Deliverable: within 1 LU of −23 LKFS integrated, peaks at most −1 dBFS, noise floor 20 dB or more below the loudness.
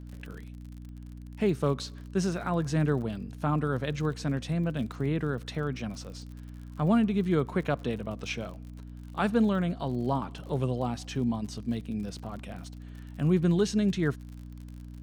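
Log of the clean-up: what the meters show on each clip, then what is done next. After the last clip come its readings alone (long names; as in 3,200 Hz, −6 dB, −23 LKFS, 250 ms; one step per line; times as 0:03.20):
crackle rate 50 per second; mains hum 60 Hz; hum harmonics up to 300 Hz; level of the hum −41 dBFS; integrated loudness −30.0 LKFS; sample peak −13.5 dBFS; target loudness −23.0 LKFS
→ click removal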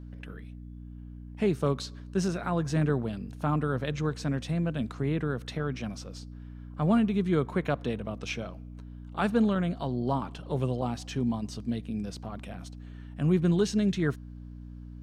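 crackle rate 0.13 per second; mains hum 60 Hz; hum harmonics up to 300 Hz; level of the hum −41 dBFS
→ hum removal 60 Hz, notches 5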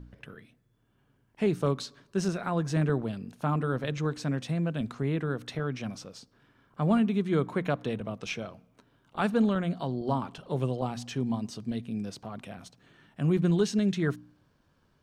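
mains hum none found; integrated loudness −30.0 LKFS; sample peak −14.0 dBFS; target loudness −23.0 LKFS
→ level +7 dB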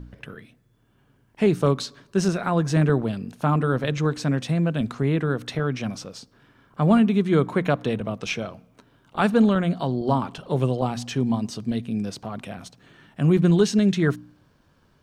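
integrated loudness −23.0 LKFS; sample peak −7.0 dBFS; background noise floor −62 dBFS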